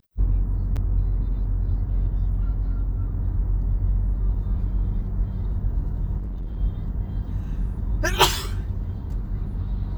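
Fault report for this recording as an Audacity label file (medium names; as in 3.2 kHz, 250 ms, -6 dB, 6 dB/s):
0.760000	0.770000	dropout 7 ms
6.170000	6.590000	clipped -27 dBFS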